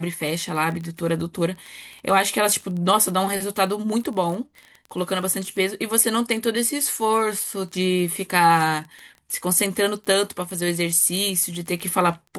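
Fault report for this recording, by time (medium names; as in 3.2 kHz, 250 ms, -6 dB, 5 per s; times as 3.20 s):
crackle 18 per s -29 dBFS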